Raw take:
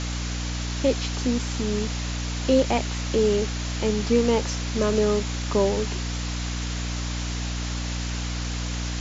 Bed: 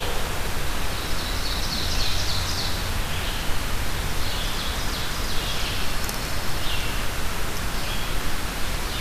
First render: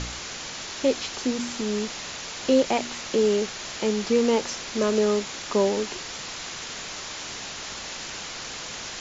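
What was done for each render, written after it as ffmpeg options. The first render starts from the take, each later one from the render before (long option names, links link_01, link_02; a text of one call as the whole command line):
ffmpeg -i in.wav -af "bandreject=frequency=60:width_type=h:width=4,bandreject=frequency=120:width_type=h:width=4,bandreject=frequency=180:width_type=h:width=4,bandreject=frequency=240:width_type=h:width=4,bandreject=frequency=300:width_type=h:width=4" out.wav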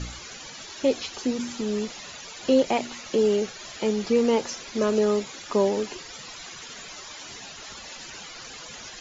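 ffmpeg -i in.wav -af "afftdn=noise_reduction=13:noise_floor=-36" out.wav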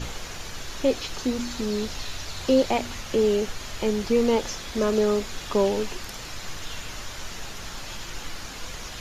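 ffmpeg -i in.wav -i bed.wav -filter_complex "[1:a]volume=-12dB[link_01];[0:a][link_01]amix=inputs=2:normalize=0" out.wav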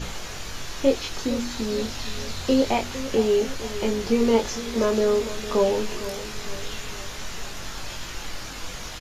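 ffmpeg -i in.wav -filter_complex "[0:a]asplit=2[link_01][link_02];[link_02]adelay=22,volume=-4.5dB[link_03];[link_01][link_03]amix=inputs=2:normalize=0,asplit=2[link_04][link_05];[link_05]adelay=456,lowpass=frequency=2000:poles=1,volume=-13dB,asplit=2[link_06][link_07];[link_07]adelay=456,lowpass=frequency=2000:poles=1,volume=0.54,asplit=2[link_08][link_09];[link_09]adelay=456,lowpass=frequency=2000:poles=1,volume=0.54,asplit=2[link_10][link_11];[link_11]adelay=456,lowpass=frequency=2000:poles=1,volume=0.54,asplit=2[link_12][link_13];[link_13]adelay=456,lowpass=frequency=2000:poles=1,volume=0.54,asplit=2[link_14][link_15];[link_15]adelay=456,lowpass=frequency=2000:poles=1,volume=0.54[link_16];[link_04][link_06][link_08][link_10][link_12][link_14][link_16]amix=inputs=7:normalize=0" out.wav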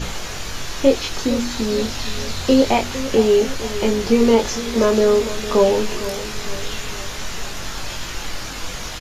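ffmpeg -i in.wav -af "volume=6dB,alimiter=limit=-3dB:level=0:latency=1" out.wav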